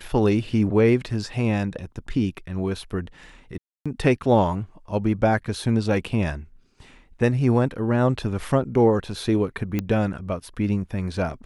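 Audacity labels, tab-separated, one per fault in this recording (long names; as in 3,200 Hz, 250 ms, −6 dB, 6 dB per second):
3.580000	3.860000	drop-out 276 ms
9.790000	9.790000	click −12 dBFS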